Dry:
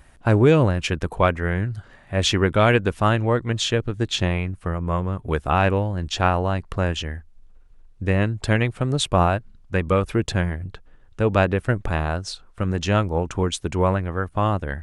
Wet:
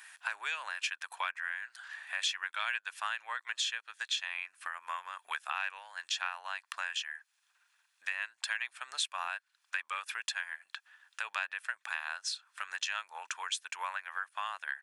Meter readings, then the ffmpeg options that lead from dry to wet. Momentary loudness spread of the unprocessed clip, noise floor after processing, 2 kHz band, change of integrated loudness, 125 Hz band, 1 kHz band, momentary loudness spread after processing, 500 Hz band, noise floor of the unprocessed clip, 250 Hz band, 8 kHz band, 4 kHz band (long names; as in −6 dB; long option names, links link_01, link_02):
9 LU, −78 dBFS, −6.5 dB, −15.0 dB, below −40 dB, −14.5 dB, 8 LU, −35.5 dB, −50 dBFS, below −40 dB, −7.0 dB, −7.5 dB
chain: -af "highpass=frequency=1300:width=0.5412,highpass=frequency=1300:width=1.3066,aecho=1:1:1.2:0.32,acompressor=threshold=-43dB:ratio=3,volume=6dB"